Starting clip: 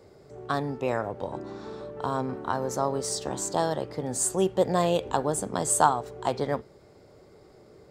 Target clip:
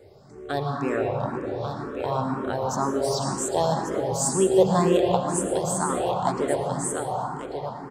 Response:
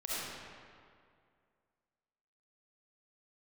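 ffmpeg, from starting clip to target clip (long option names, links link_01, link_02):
-filter_complex "[0:a]aecho=1:1:1140:0.376,asplit=3[link_01][link_02][link_03];[link_01]afade=type=out:start_time=5.04:duration=0.02[link_04];[link_02]acompressor=threshold=-25dB:ratio=4,afade=type=in:start_time=5.04:duration=0.02,afade=type=out:start_time=5.88:duration=0.02[link_05];[link_03]afade=type=in:start_time=5.88:duration=0.02[link_06];[link_04][link_05][link_06]amix=inputs=3:normalize=0,asplit=2[link_07][link_08];[1:a]atrim=start_sample=2205,asetrate=25578,aresample=44100,lowshelf=frequency=480:gain=4.5[link_09];[link_08][link_09]afir=irnorm=-1:irlink=0,volume=-9dB[link_10];[link_07][link_10]amix=inputs=2:normalize=0,asplit=2[link_11][link_12];[link_12]afreqshift=2[link_13];[link_11][link_13]amix=inputs=2:normalize=1,volume=1.5dB"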